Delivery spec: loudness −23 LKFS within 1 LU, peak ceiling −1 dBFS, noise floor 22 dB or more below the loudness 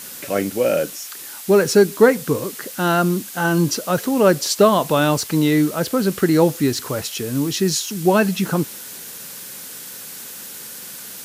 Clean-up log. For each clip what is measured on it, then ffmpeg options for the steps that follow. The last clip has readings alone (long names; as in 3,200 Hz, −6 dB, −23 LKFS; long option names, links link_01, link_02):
background noise floor −35 dBFS; target noise floor −41 dBFS; integrated loudness −18.5 LKFS; sample peak −1.5 dBFS; target loudness −23.0 LKFS
→ -af "afftdn=noise_reduction=6:noise_floor=-35"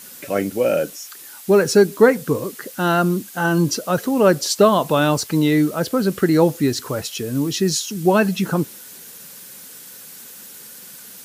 background noise floor −40 dBFS; target noise floor −41 dBFS
→ -af "afftdn=noise_reduction=6:noise_floor=-40"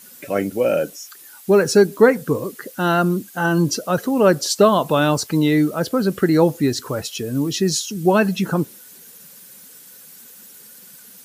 background noise floor −44 dBFS; integrated loudness −18.5 LKFS; sample peak −2.0 dBFS; target loudness −23.0 LKFS
→ -af "volume=-4.5dB"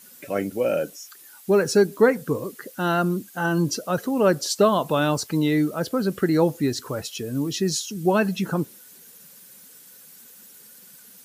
integrated loudness −23.0 LKFS; sample peak −6.5 dBFS; background noise floor −48 dBFS